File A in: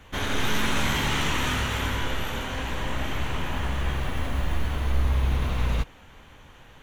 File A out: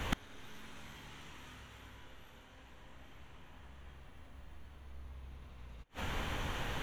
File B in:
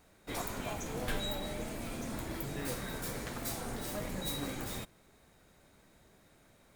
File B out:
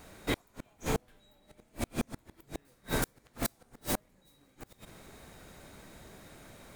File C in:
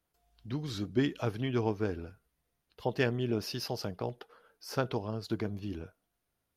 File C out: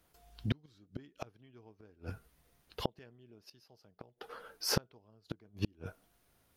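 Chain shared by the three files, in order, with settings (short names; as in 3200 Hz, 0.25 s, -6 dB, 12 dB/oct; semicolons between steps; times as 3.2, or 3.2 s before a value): flipped gate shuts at -29 dBFS, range -38 dB; gain +11 dB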